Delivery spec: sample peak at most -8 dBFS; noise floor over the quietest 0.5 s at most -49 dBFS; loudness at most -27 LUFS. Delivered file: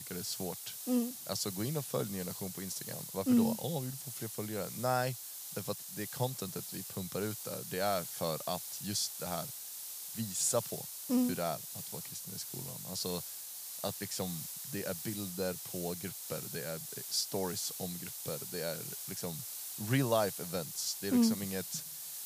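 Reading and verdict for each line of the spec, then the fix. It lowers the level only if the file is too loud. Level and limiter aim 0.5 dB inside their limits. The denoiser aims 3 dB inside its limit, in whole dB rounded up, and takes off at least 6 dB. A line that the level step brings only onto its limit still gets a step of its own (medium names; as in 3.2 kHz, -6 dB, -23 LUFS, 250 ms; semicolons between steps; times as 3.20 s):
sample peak -16.5 dBFS: pass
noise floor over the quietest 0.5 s -45 dBFS: fail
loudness -36.0 LUFS: pass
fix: noise reduction 7 dB, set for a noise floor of -45 dBFS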